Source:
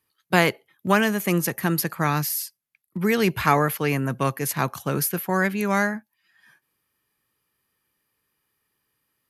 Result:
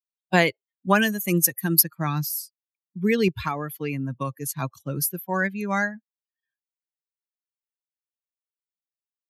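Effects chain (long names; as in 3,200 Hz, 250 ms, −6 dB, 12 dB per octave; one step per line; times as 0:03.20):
spectral dynamics exaggerated over time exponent 2
0:00.95–0:01.83: high-shelf EQ 5,100 Hz +12 dB
0:03.28–0:04.52: downward compressor 6 to 1, threshold −27 dBFS, peak gain reduction 11 dB
level +2.5 dB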